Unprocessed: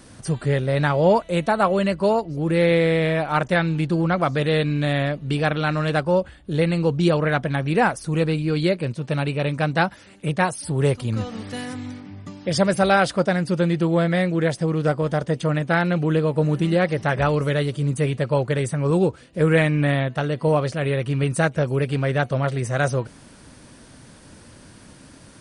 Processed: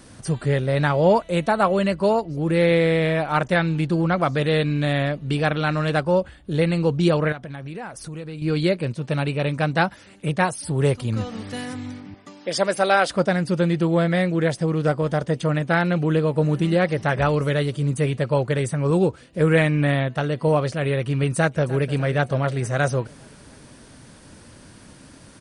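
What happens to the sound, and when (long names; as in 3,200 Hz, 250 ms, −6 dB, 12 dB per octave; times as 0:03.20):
0:07.32–0:08.42: downward compressor 5 to 1, threshold −32 dBFS
0:12.14–0:13.10: high-pass filter 340 Hz
0:21.36–0:21.92: delay throw 300 ms, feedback 65%, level −16.5 dB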